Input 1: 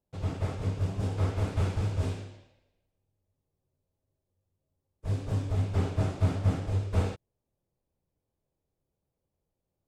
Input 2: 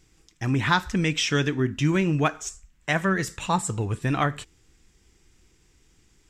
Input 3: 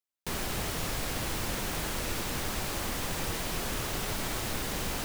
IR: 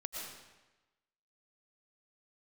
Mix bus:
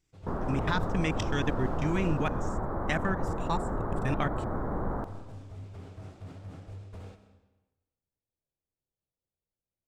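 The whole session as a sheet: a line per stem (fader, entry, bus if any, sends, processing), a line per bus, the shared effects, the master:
−16.0 dB, 0.00 s, send −5 dB, phase distortion by the signal itself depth 0.24 ms; brickwall limiter −23 dBFS, peak gain reduction 8 dB
−4.5 dB, 0.00 s, no send, output level in coarse steps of 24 dB
+1.5 dB, 0.00 s, send −7.5 dB, inverse Chebyshev low-pass filter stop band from 2,500 Hz, stop band 40 dB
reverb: on, RT60 1.1 s, pre-delay 75 ms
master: no processing

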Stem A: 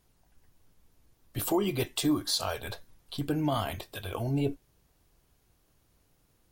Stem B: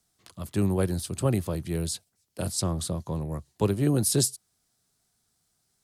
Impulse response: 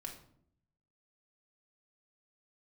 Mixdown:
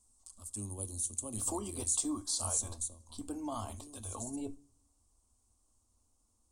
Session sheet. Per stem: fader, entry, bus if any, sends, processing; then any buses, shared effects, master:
−6.0 dB, 0.00 s, send −15.5 dB, no processing
0:02.59 −1.5 dB → 0:03.22 −13 dB, 0.00 s, send −5 dB, de-essing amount 50%; first-order pre-emphasis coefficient 0.8; flanger swept by the level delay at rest 7.9 ms, full sweep at −36.5 dBFS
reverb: on, RT60 0.65 s, pre-delay 3 ms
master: drawn EQ curve 100 Hz 0 dB, 160 Hz −29 dB, 220 Hz +1 dB, 380 Hz −9 dB, 630 Hz −6 dB, 1,100 Hz 0 dB, 1,700 Hz −19 dB, 3,900 Hz −8 dB, 8,500 Hz +12 dB, 13,000 Hz −14 dB

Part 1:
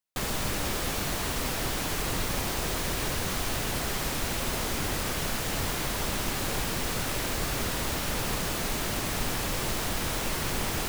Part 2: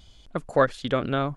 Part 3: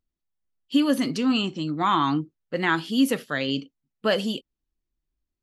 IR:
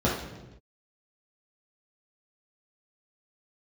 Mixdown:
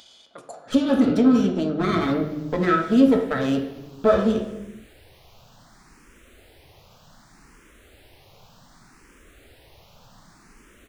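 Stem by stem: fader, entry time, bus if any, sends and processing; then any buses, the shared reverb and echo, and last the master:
−18.0 dB, 1.85 s, no bus, no send, frequency shifter mixed with the dry sound +0.66 Hz
−7.5 dB, 0.00 s, bus A, send −14.5 dB, high-pass filter 570 Hz 12 dB per octave; compressor whose output falls as the input rises −38 dBFS, ratio −1; high-shelf EQ 2,700 Hz +11 dB; automatic ducking −11 dB, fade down 0.60 s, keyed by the third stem
+1.0 dB, 0.00 s, bus A, send −17 dB, lower of the sound and its delayed copy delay 0.55 ms; hollow resonant body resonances 440/650/1,300 Hz, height 9 dB
bus A: 0.0 dB, transient designer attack +6 dB, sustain −10 dB; downward compressor, threshold −27 dBFS, peak gain reduction 17 dB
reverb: on, pre-delay 3 ms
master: high-shelf EQ 7,500 Hz −9 dB; upward compression, threshold −52 dBFS

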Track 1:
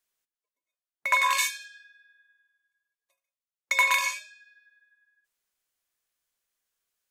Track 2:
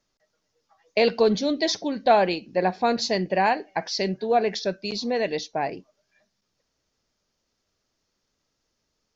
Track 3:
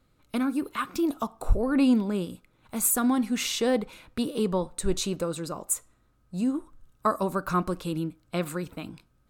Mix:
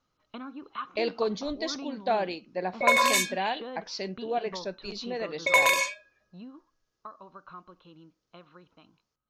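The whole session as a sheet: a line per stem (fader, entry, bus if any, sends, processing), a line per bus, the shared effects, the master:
+2.0 dB, 1.75 s, no send, low-pass that shuts in the quiet parts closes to 410 Hz, open at −20.5 dBFS; low shelf with overshoot 770 Hz +11.5 dB, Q 1.5
−8.5 dB, 0.00 s, no send, no processing
0:06.32 −2.5 dB → 0:06.68 −12 dB, 0.00 s, no send, downward compressor 5 to 1, threshold −26 dBFS, peak gain reduction 10.5 dB; Chebyshev low-pass with heavy ripple 4,200 Hz, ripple 9 dB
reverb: not used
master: low-shelf EQ 110 Hz −7 dB

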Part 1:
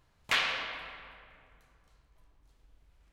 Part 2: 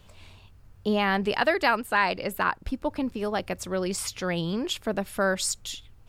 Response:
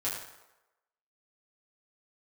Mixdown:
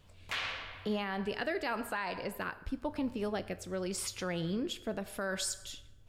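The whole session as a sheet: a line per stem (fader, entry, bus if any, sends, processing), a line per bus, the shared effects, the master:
−1.5 dB, 0.00 s, no send, automatic ducking −12 dB, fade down 1.40 s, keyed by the second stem
−5.5 dB, 0.00 s, send −15 dB, rotating-speaker cabinet horn 0.9 Hz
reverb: on, RT60 1.0 s, pre-delay 5 ms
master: brickwall limiter −25 dBFS, peak gain reduction 10 dB

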